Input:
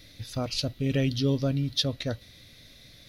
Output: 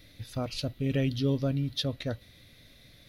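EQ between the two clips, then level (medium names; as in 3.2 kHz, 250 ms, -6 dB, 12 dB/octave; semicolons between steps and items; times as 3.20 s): peaking EQ 5.5 kHz -6.5 dB 1.1 oct; -2.0 dB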